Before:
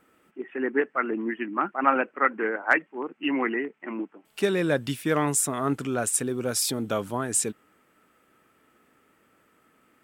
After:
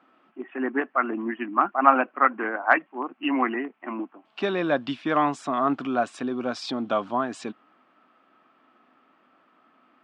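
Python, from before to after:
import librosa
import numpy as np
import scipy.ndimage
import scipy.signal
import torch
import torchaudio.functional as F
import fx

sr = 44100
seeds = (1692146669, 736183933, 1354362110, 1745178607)

y = fx.cabinet(x, sr, low_hz=240.0, low_slope=12, high_hz=4200.0, hz=(250.0, 450.0, 710.0, 1100.0, 2000.0), db=(5, -8, 8, 7, -4))
y = y * librosa.db_to_amplitude(1.0)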